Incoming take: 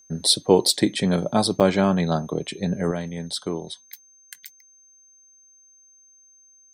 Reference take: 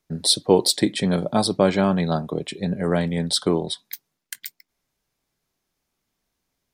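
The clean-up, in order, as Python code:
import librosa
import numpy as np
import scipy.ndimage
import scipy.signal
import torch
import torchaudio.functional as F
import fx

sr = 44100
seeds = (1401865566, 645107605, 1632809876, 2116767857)

y = fx.notch(x, sr, hz=6300.0, q=30.0)
y = fx.fix_interpolate(y, sr, at_s=(1.6,), length_ms=7.4)
y = fx.gain(y, sr, db=fx.steps((0.0, 0.0), (2.91, 7.5)))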